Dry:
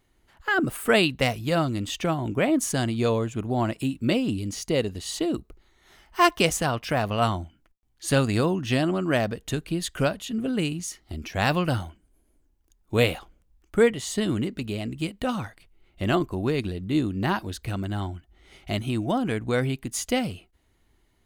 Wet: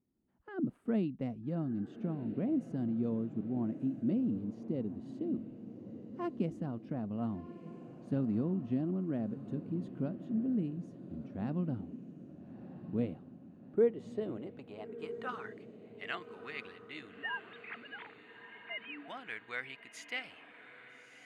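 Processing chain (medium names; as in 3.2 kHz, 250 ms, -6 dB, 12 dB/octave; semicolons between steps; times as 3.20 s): 17.18–19.08 s: formants replaced by sine waves; band-pass sweep 220 Hz -> 2 kHz, 13.32–15.67 s; echo that smears into a reverb 1290 ms, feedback 48%, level -12 dB; trim -4 dB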